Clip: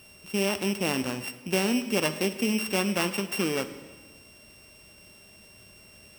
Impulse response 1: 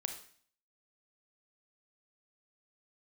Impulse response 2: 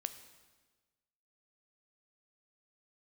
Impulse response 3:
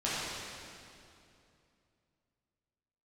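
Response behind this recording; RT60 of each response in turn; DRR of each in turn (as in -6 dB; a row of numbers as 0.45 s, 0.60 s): 2; 0.50 s, 1.3 s, 2.7 s; 5.5 dB, 10.0 dB, -10.0 dB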